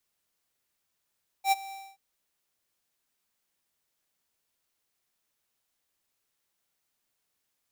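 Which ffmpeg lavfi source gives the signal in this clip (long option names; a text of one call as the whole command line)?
ffmpeg -f lavfi -i "aevalsrc='0.0891*(2*lt(mod(781*t,1),0.5)-1)':duration=0.529:sample_rate=44100,afade=type=in:duration=0.078,afade=type=out:start_time=0.078:duration=0.027:silence=0.1,afade=type=out:start_time=0.28:duration=0.249" out.wav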